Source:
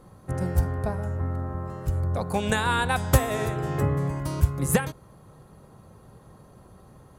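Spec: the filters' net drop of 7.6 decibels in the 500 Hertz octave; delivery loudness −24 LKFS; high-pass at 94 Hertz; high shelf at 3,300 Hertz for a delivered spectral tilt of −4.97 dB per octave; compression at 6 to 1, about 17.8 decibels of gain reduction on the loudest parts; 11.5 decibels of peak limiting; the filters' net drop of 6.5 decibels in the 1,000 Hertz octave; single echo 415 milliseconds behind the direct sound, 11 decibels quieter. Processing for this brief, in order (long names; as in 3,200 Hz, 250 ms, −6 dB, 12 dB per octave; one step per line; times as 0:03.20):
high-pass filter 94 Hz
parametric band 500 Hz −8 dB
parametric band 1,000 Hz −6.5 dB
high-shelf EQ 3,300 Hz +6 dB
downward compressor 6 to 1, threshold −35 dBFS
brickwall limiter −29.5 dBFS
single-tap delay 415 ms −11 dB
level +16 dB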